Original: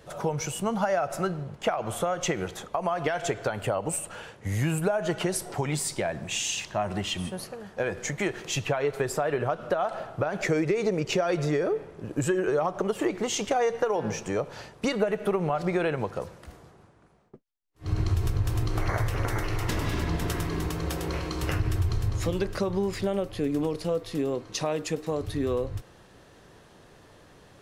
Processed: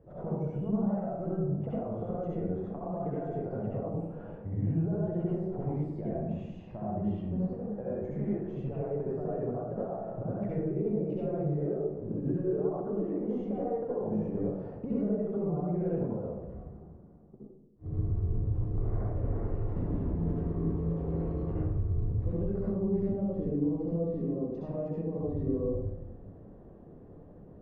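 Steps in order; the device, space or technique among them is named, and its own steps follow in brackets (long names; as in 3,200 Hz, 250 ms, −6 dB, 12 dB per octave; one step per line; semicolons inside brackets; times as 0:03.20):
television next door (downward compressor 4 to 1, threshold −32 dBFS, peak gain reduction 11 dB; low-pass filter 460 Hz 12 dB per octave; convolution reverb RT60 0.85 s, pre-delay 61 ms, DRR −7 dB)
level −3.5 dB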